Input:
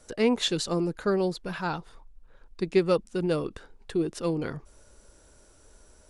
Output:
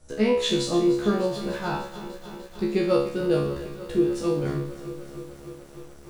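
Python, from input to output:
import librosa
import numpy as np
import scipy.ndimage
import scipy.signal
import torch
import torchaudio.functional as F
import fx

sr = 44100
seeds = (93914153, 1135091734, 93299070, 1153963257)

p1 = fx.low_shelf(x, sr, hz=350.0, db=9.0)
p2 = fx.comb_fb(p1, sr, f0_hz=70.0, decay_s=0.56, harmonics='all', damping=0.0, mix_pct=100)
p3 = np.where(np.abs(p2) >= 10.0 ** (-47.5 / 20.0), p2, 0.0)
p4 = p2 + (p3 * librosa.db_to_amplitude(-11.0))
p5 = fx.echo_crushed(p4, sr, ms=299, feedback_pct=80, bits=9, wet_db=-14.0)
y = p5 * librosa.db_to_amplitude(9.0)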